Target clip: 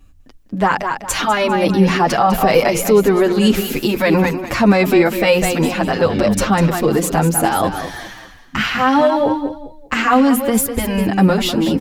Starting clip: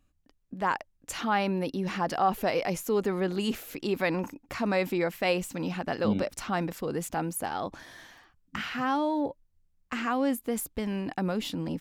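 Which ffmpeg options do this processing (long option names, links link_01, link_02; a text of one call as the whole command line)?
ffmpeg -i in.wav -filter_complex "[0:a]lowshelf=frequency=87:gain=9,bandreject=frequency=60:width_type=h:width=6,bandreject=frequency=120:width_type=h:width=6,bandreject=frequency=180:width_type=h:width=6,bandreject=frequency=240:width_type=h:width=6,bandreject=frequency=300:width_type=h:width=6,asplit=2[link_01][link_02];[link_02]aecho=0:1:200|400|600:0.335|0.1|0.0301[link_03];[link_01][link_03]amix=inputs=2:normalize=0,alimiter=level_in=19dB:limit=-1dB:release=50:level=0:latency=1,asplit=2[link_04][link_05];[link_05]adelay=7.2,afreqshift=-1.7[link_06];[link_04][link_06]amix=inputs=2:normalize=1" out.wav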